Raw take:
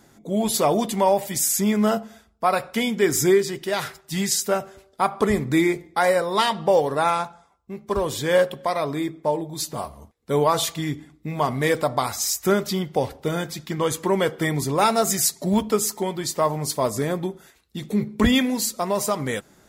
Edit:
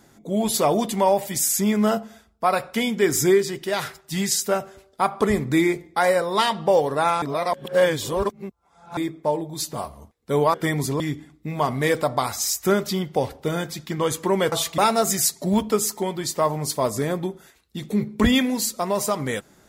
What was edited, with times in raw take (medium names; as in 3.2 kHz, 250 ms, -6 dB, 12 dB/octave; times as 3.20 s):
7.22–8.97 s: reverse
10.54–10.80 s: swap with 14.32–14.78 s